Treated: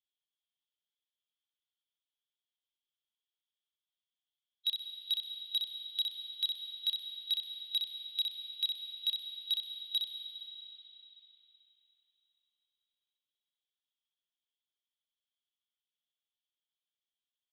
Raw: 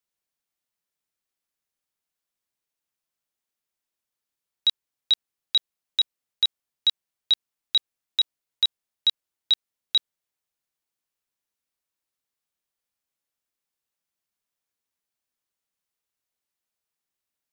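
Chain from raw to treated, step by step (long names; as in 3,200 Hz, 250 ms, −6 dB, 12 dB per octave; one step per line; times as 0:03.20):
spectral magnitudes quantised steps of 15 dB
in parallel at 0 dB: downward compressor, threshold −28 dBFS, peak gain reduction 11 dB
on the sum: resonant band-pass 3,300 Hz, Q 12
soft clipping −24 dBFS, distortion −18 dB
repeating echo 63 ms, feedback 31%, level −5 dB
on a send at −6 dB: convolution reverb RT60 4.8 s, pre-delay 97 ms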